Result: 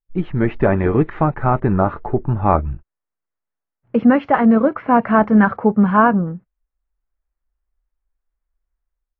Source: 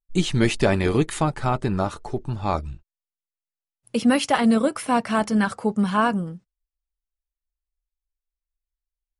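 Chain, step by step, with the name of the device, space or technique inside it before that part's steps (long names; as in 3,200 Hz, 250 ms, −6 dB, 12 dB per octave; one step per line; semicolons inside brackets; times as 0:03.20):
action camera in a waterproof case (low-pass filter 1,800 Hz 24 dB per octave; automatic gain control gain up to 12 dB; AAC 48 kbit/s 16,000 Hz)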